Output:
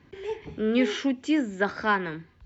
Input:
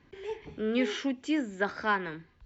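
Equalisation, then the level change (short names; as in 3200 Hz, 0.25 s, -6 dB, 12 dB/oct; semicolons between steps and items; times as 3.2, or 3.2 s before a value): HPF 52 Hz; low shelf 250 Hz +4 dB; +3.5 dB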